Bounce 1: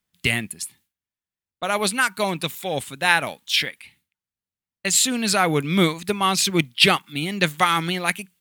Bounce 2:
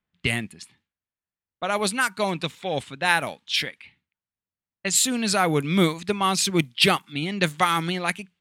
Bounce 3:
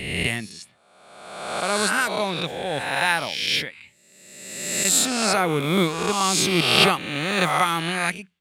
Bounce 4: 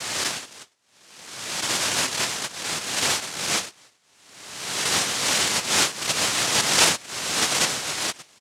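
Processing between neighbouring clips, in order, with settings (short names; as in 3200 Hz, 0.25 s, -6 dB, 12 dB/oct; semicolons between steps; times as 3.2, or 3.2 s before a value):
low-pass opened by the level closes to 2400 Hz, open at -15 dBFS; dynamic EQ 2600 Hz, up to -3 dB, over -28 dBFS, Q 0.73; gain -1 dB
spectral swells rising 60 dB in 1.33 s; gain -2.5 dB
speakerphone echo 0.28 s, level -18 dB; reverb removal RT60 1.5 s; noise vocoder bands 1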